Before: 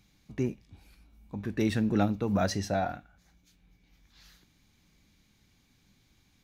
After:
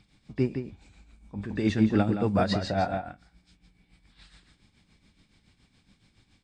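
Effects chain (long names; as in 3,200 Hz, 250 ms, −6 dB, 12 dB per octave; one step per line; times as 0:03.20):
hearing-aid frequency compression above 3,200 Hz 1.5 to 1
slap from a distant wall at 29 metres, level −6 dB
amplitude tremolo 7.1 Hz, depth 63%
level +5 dB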